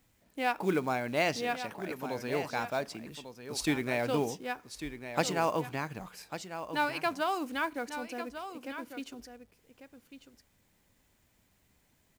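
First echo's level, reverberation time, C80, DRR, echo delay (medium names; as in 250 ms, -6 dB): -10.5 dB, no reverb, no reverb, no reverb, 1147 ms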